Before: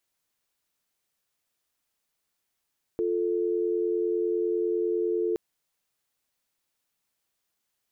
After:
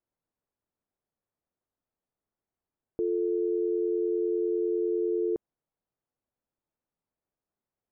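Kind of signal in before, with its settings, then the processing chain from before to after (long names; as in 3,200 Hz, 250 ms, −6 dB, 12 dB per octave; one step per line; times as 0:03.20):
call progress tone dial tone, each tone −26.5 dBFS 2.37 s
Bessel low-pass filter 680 Hz, order 2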